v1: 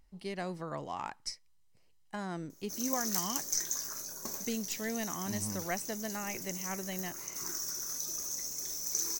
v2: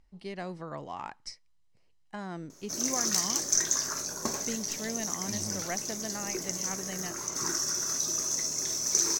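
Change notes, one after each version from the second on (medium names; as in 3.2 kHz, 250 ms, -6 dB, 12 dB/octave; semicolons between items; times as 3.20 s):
background +11.5 dB; master: add distance through air 55 m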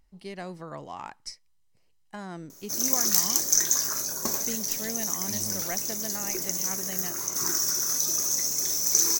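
master: remove distance through air 55 m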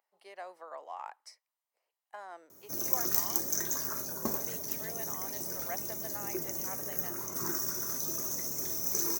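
speech: add high-pass 580 Hz 24 dB/octave; master: add peaking EQ 5.3 kHz -13 dB 2.9 oct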